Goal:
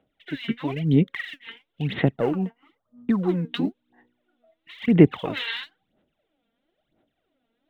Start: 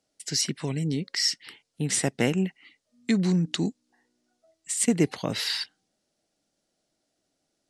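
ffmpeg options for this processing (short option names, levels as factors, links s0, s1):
-filter_complex "[0:a]asettb=1/sr,asplit=3[s0][s1][s2];[s0]atrim=end=2.164[s3];[s1]atrim=start=2.16:end=3.29,asetpts=PTS-STARTPTS,afade=t=in:d=0.004:c=qsin,afade=t=out:st=1.126:d=0.004:c=qsin,highshelf=f=1600:t=q:w=3:g=-10.5[s4];[s2]atrim=start=3.286[s5];[s3][s4]acrossfade=d=0.004:c1=hsin:c2=qsin[s6];[s6][s5]acrossfade=d=0.004:c1=qsin:c2=hsin,asplit=2[s7][s8];[s8]alimiter=limit=0.126:level=0:latency=1:release=32,volume=1.26[s9];[s7][s9]amix=inputs=2:normalize=0,aresample=8000,aresample=44100,aphaser=in_gain=1:out_gain=1:delay=4.4:decay=0.74:speed=1:type=sinusoidal,volume=0.501"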